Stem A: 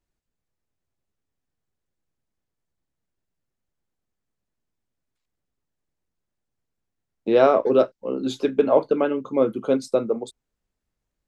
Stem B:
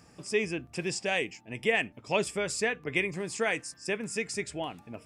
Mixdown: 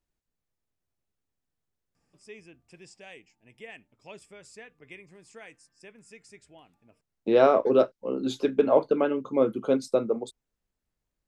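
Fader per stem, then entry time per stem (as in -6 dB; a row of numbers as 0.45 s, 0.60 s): -3.0 dB, -18.0 dB; 0.00 s, 1.95 s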